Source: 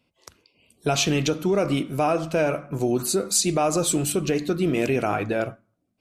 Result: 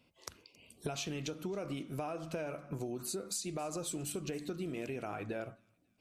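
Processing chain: compression 8:1, threshold -37 dBFS, peak gain reduction 19 dB; feedback echo behind a high-pass 272 ms, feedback 45%, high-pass 3.4 kHz, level -20.5 dB

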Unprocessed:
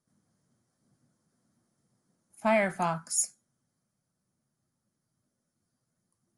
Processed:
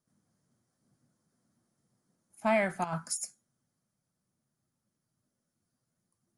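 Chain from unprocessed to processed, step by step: 2.84–3.24 s: compressor with a negative ratio -32 dBFS, ratio -0.5; trim -2 dB

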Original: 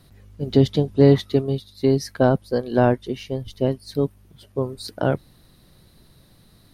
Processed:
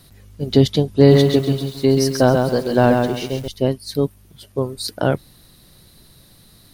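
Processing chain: treble shelf 3.3 kHz +8.5 dB; 0.92–3.48 s: bit-crushed delay 134 ms, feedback 35%, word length 7-bit, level -4 dB; trim +2.5 dB

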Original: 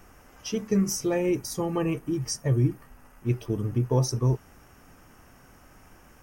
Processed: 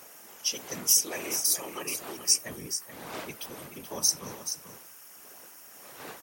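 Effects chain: wind noise 470 Hz -36 dBFS; whisper effect; in parallel at -11 dB: saturation -26 dBFS, distortion -7 dB; on the sum: differentiator; delay 430 ms -9.5 dB; trim +9 dB

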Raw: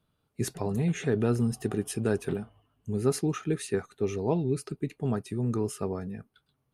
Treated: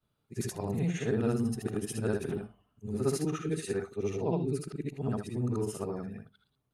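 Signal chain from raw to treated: short-time spectra conjugated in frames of 162 ms; on a send: reverberation RT60 0.35 s, pre-delay 4 ms, DRR 23.5 dB

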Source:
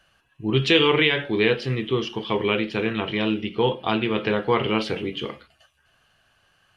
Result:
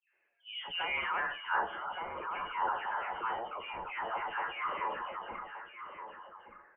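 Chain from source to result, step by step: delay that grows with frequency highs late, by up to 358 ms; on a send: delay 1172 ms -14 dB; on the sum: band-pass sweep 690 Hz -> 2.1 kHz, 0.69–1.65 s; transient shaper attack -4 dB, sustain +5 dB; frequency inversion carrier 3.3 kHz; three-band isolator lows -16 dB, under 490 Hz, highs -17 dB, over 2 kHz; in parallel at +1 dB: compression, threshold -50 dBFS, peak gain reduction 20.5 dB; on the sum: level-controlled noise filter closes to 2.6 kHz

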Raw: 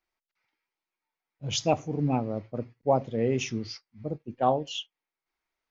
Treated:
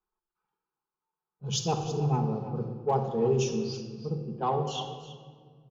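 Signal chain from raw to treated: static phaser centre 410 Hz, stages 8; level-controlled noise filter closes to 1.8 kHz, open at -29 dBFS; Chebyshev shaper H 5 -31 dB, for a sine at -17 dBFS; on a send: delay 326 ms -14.5 dB; on the sum: simulated room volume 2500 m³, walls mixed, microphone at 1.4 m

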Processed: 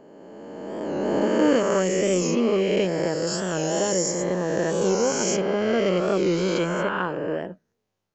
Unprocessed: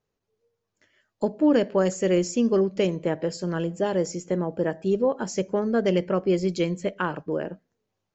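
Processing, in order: reverse spectral sustain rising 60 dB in 2.46 s; 3.27–5.37 s: treble shelf 4.4 kHz +11 dB; warped record 45 rpm, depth 100 cents; trim -2.5 dB

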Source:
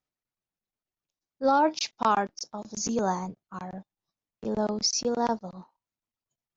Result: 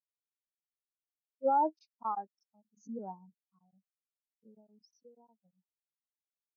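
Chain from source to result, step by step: 3.41–5.45 s: compression 8:1, threshold -31 dBFS, peak gain reduction 10.5 dB; spectral contrast expander 2.5:1; trim -8 dB

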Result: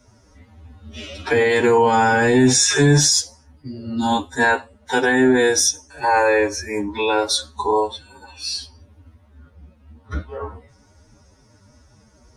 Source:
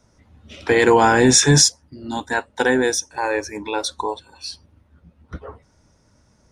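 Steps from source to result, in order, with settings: peak limiter -12 dBFS, peak gain reduction 10 dB; time stretch by phase-locked vocoder 1.9×; comb of notches 170 Hz; trim +7 dB

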